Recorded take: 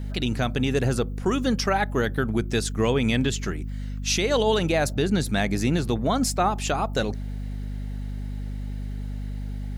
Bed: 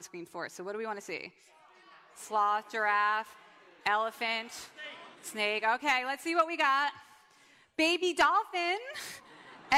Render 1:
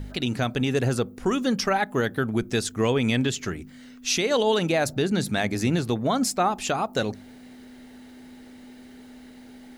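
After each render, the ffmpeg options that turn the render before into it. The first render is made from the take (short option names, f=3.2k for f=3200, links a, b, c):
-af "bandreject=f=50:t=h:w=4,bandreject=f=100:t=h:w=4,bandreject=f=150:t=h:w=4,bandreject=f=200:t=h:w=4"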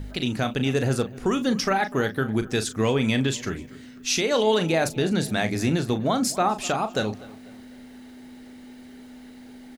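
-filter_complex "[0:a]asplit=2[a][b];[b]adelay=37,volume=-10dB[c];[a][c]amix=inputs=2:normalize=0,asplit=2[d][e];[e]adelay=248,lowpass=f=3.4k:p=1,volume=-19.5dB,asplit=2[f][g];[g]adelay=248,lowpass=f=3.4k:p=1,volume=0.43,asplit=2[h][i];[i]adelay=248,lowpass=f=3.4k:p=1,volume=0.43[j];[d][f][h][j]amix=inputs=4:normalize=0"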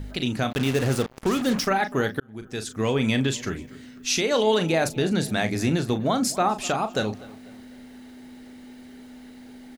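-filter_complex "[0:a]asplit=3[a][b][c];[a]afade=t=out:st=0.5:d=0.02[d];[b]acrusher=bits=4:mix=0:aa=0.5,afade=t=in:st=0.5:d=0.02,afade=t=out:st=1.66:d=0.02[e];[c]afade=t=in:st=1.66:d=0.02[f];[d][e][f]amix=inputs=3:normalize=0,asplit=2[g][h];[g]atrim=end=2.2,asetpts=PTS-STARTPTS,afade=t=out:st=2.196:d=0.004:c=hsin[i];[h]atrim=start=2.2,asetpts=PTS-STARTPTS,afade=t=in:d=0.82[j];[i][j]concat=n=2:v=0:a=1"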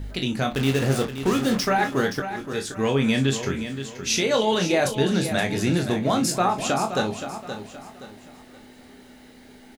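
-filter_complex "[0:a]asplit=2[a][b];[b]adelay=22,volume=-6dB[c];[a][c]amix=inputs=2:normalize=0,asplit=2[d][e];[e]aecho=0:1:523|1046|1569|2092:0.316|0.111|0.0387|0.0136[f];[d][f]amix=inputs=2:normalize=0"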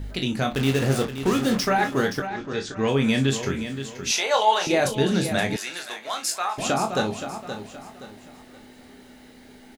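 -filter_complex "[0:a]asettb=1/sr,asplit=3[a][b][c];[a]atrim=end=2.274[d];[b]atrim=start=2.27:end=2.88,asetpts=PTS-STARTPTS,afade=t=in:d=0.004:c=qsin,afade=t=out:st=0.606:d=0.004:c=qsin,lowpass=f=6.3k:w=0.5412,lowpass=f=6.3k:w=1.3066[e];[c]atrim=start=2.876[f];[d][e]acrossfade=d=0.004:c1=hsin:c2=qsin[g];[g][f]acrossfade=d=0.004:c1=qsin:c2=hsin,asettb=1/sr,asplit=3[h][i][j];[h]atrim=end=4.114[k];[i]atrim=start=4.11:end=4.67,asetpts=PTS-STARTPTS,afade=t=in:d=0.004:c=qsin,afade=t=out:st=0.556:d=0.004:c=qsin,highpass=f=790:t=q:w=2.7[l];[j]atrim=start=4.666[m];[k][l]acrossfade=d=0.004:c1=hsin:c2=qsin[n];[n][m]acrossfade=d=0.004:c1=qsin:c2=hsin,asettb=1/sr,asplit=3[o][p][q];[o]atrim=end=5.564[r];[p]atrim=start=5.56:end=6.58,asetpts=PTS-STARTPTS,afade=t=in:d=0.004:c=qsin,afade=t=out:st=1.016:d=0.004:c=qsin,highpass=1.1k[s];[q]atrim=start=6.576[t];[r][s]acrossfade=d=0.004:c1=hsin:c2=qsin[u];[u][t]acrossfade=d=0.004:c1=qsin:c2=hsin"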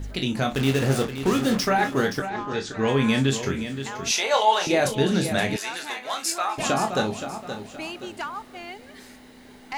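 -filter_complex "[1:a]volume=-7.5dB[a];[0:a][a]amix=inputs=2:normalize=0"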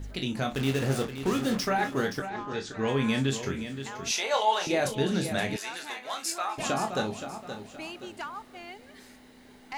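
-af "volume=-5.5dB"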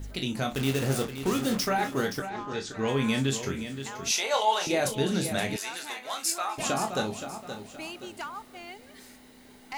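-af "highshelf=f=7.5k:g=8.5,bandreject=f=1.7k:w=25"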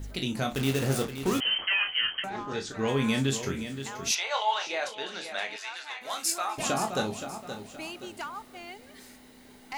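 -filter_complex "[0:a]asettb=1/sr,asplit=3[a][b][c];[a]atrim=end=1.404[d];[b]atrim=start=1.4:end=2.24,asetpts=PTS-STARTPTS,afade=t=in:d=0.004:c=qsin,afade=t=out:st=0.836:d=0.004:c=qsin,lowpass=f=2.8k:t=q:w=0.5098,lowpass=f=2.8k:t=q:w=0.6013,lowpass=f=2.8k:t=q:w=0.9,lowpass=f=2.8k:t=q:w=2.563,afreqshift=-3300[e];[c]atrim=start=2.236[f];[d][e]acrossfade=d=0.004:c1=hsin:c2=qsin[g];[g][f]acrossfade=d=0.004:c1=qsin:c2=hsin,asplit=3[h][i][j];[h]afade=t=out:st=4.14:d=0.02[k];[i]highpass=790,lowpass=4.2k,afade=t=in:st=4.14:d=0.02,afade=t=out:st=6:d=0.02[l];[j]afade=t=in:st=6:d=0.02[m];[k][l][m]amix=inputs=3:normalize=0"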